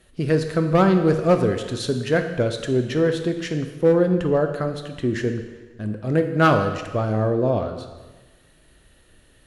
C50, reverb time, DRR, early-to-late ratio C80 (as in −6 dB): 8.0 dB, 1.3 s, 6.0 dB, 9.5 dB